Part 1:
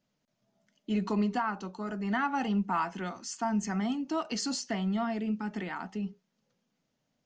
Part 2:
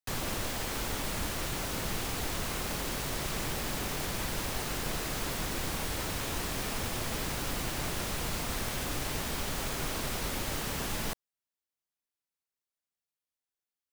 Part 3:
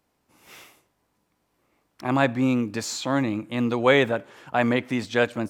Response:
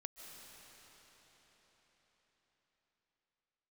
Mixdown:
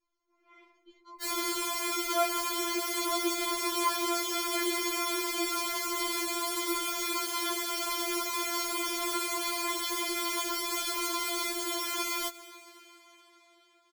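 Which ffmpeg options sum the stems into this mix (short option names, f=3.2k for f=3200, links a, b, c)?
-filter_complex "[0:a]acompressor=threshold=-41dB:ratio=3,volume=-6.5dB[a];[1:a]highpass=81,adelay=1150,volume=2dB,asplit=2[b][c];[c]volume=-5.5dB[d];[2:a]lowpass=1.5k,dynaudnorm=f=230:g=5:m=13.5dB,volume=-14dB[e];[3:a]atrim=start_sample=2205[f];[d][f]afir=irnorm=-1:irlink=0[g];[a][b][e][g]amix=inputs=4:normalize=0,aecho=1:1:4.9:0.84,afftfilt=real='re*4*eq(mod(b,16),0)':imag='im*4*eq(mod(b,16),0)':win_size=2048:overlap=0.75"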